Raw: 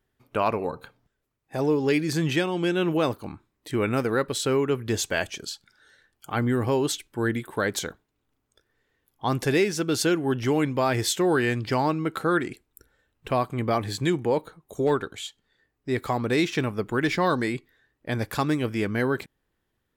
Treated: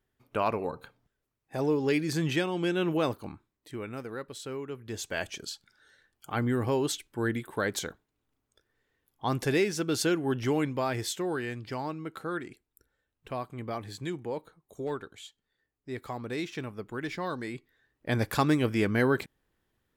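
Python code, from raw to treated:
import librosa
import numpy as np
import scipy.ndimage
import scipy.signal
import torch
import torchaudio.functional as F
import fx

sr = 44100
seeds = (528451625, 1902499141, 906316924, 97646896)

y = fx.gain(x, sr, db=fx.line((3.27, -4.0), (3.86, -14.0), (4.79, -14.0), (5.32, -4.0), (10.51, -4.0), (11.48, -11.0), (17.41, -11.0), (18.14, 0.0)))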